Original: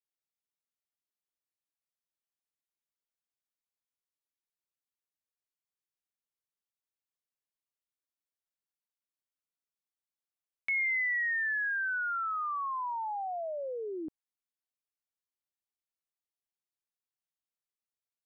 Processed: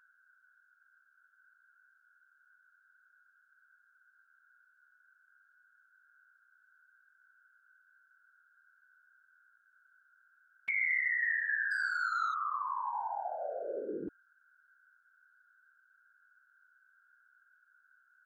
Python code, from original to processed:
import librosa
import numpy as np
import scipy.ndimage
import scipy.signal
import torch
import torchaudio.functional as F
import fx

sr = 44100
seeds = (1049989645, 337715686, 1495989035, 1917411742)

y = fx.leveller(x, sr, passes=1, at=(11.71, 12.34))
y = y + 10.0 ** (-63.0 / 20.0) * np.sin(2.0 * np.pi * 1500.0 * np.arange(len(y)) / sr)
y = fx.whisperise(y, sr, seeds[0])
y = y * 10.0 ** (-1.5 / 20.0)